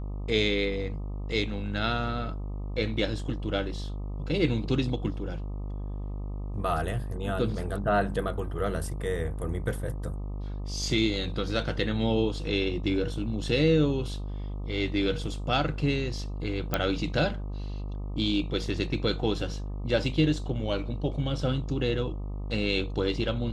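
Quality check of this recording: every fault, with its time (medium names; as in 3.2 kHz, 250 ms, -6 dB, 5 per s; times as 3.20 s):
buzz 50 Hz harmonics 25 -34 dBFS
16.74 s: pop -10 dBFS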